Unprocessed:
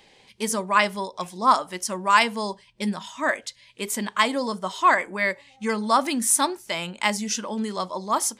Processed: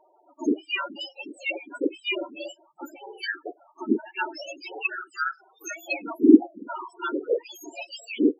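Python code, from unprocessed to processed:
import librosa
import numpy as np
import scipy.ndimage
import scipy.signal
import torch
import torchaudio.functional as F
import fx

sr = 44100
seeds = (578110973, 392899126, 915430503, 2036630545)

y = fx.octave_mirror(x, sr, pivot_hz=1700.0)
y = fx.env_lowpass_down(y, sr, base_hz=560.0, full_db=-15.5)
y = fx.spec_topn(y, sr, count=8)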